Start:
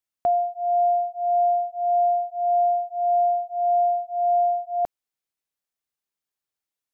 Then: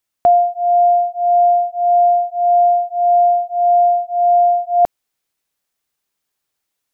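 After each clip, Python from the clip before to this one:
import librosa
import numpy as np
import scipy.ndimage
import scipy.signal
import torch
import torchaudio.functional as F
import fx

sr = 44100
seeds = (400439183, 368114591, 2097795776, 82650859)

y = fx.rider(x, sr, range_db=10, speed_s=0.5)
y = F.gain(torch.from_numpy(y), 8.5).numpy()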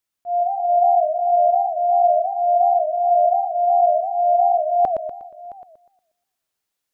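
y = fx.auto_swell(x, sr, attack_ms=177.0)
y = y + 10.0 ** (-19.5 / 20.0) * np.pad(y, (int(667 * sr / 1000.0), 0))[:len(y)]
y = fx.echo_warbled(y, sr, ms=120, feedback_pct=40, rate_hz=2.8, cents=213, wet_db=-5.5)
y = F.gain(torch.from_numpy(y), -4.5).numpy()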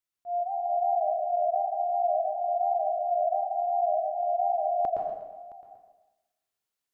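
y = fx.rev_plate(x, sr, seeds[0], rt60_s=0.73, hf_ratio=0.9, predelay_ms=115, drr_db=2.5)
y = F.gain(torch.from_numpy(y), -8.5).numpy()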